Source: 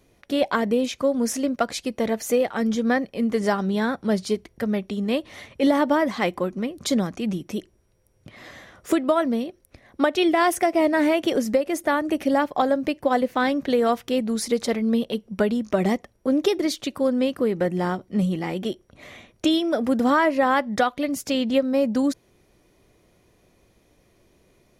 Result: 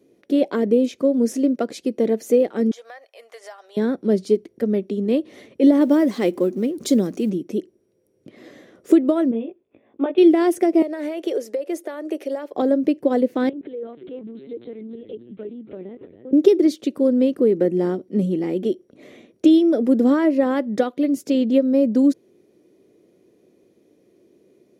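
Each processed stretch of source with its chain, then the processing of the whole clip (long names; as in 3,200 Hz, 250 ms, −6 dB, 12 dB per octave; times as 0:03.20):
0:02.71–0:03.77: elliptic high-pass filter 680 Hz, stop band 80 dB + downward compressor 2.5 to 1, threshold −34 dBFS
0:05.81–0:07.30: mu-law and A-law mismatch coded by mu + high-shelf EQ 4,700 Hz +8.5 dB
0:09.31–0:10.18: Chebyshev low-pass with heavy ripple 3,600 Hz, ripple 9 dB + double-tracking delay 18 ms −3 dB
0:10.82–0:12.54: high-pass filter 420 Hz 24 dB per octave + downward compressor, threshold −23 dBFS
0:13.49–0:16.33: downward compressor 3 to 1, threshold −38 dBFS + echo with shifted repeats 286 ms, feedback 32%, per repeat −110 Hz, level −11 dB + linear-prediction vocoder at 8 kHz pitch kept
whole clip: high-pass filter 280 Hz 12 dB per octave; low shelf with overshoot 590 Hz +13.5 dB, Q 1.5; level −6.5 dB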